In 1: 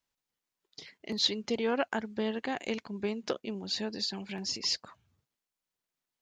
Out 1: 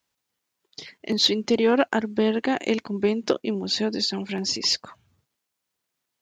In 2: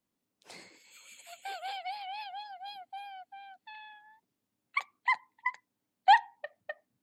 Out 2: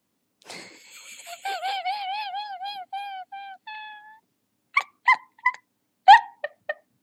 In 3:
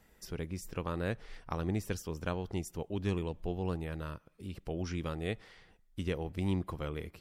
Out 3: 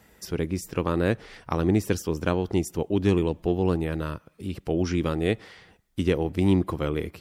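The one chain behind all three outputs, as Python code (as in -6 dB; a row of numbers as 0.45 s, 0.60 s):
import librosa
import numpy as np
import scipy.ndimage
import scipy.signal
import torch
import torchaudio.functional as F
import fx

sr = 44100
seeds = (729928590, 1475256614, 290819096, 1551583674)

p1 = scipy.signal.sosfilt(scipy.signal.butter(2, 60.0, 'highpass', fs=sr, output='sos'), x)
p2 = fx.dynamic_eq(p1, sr, hz=320.0, q=1.5, threshold_db=-48.0, ratio=4.0, max_db=6)
p3 = np.clip(p2, -10.0 ** (-22.5 / 20.0), 10.0 ** (-22.5 / 20.0))
p4 = p2 + (p3 * librosa.db_to_amplitude(-11.5))
y = p4 * 10.0 ** (-26 / 20.0) / np.sqrt(np.mean(np.square(p4)))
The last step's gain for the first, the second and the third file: +6.0 dB, +8.0 dB, +7.0 dB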